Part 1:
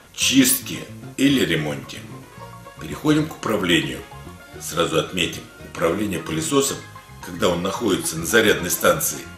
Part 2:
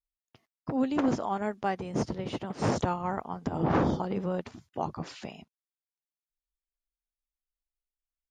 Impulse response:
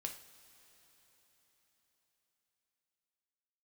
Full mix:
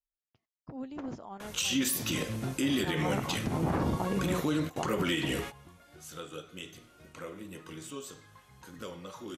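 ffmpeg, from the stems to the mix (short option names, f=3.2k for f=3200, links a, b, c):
-filter_complex "[0:a]acompressor=threshold=-28dB:ratio=2,adelay=1400,volume=2dB[a];[1:a]lowshelf=f=100:g=10.5,volume=-1.5dB,afade=t=in:st=2.76:d=0.25:silence=0.237137,asplit=2[b][c];[c]apad=whole_len=475026[d];[a][d]sidechaingate=range=-18dB:threshold=-55dB:ratio=16:detection=peak[e];[e][b]amix=inputs=2:normalize=0,alimiter=limit=-20.5dB:level=0:latency=1:release=96"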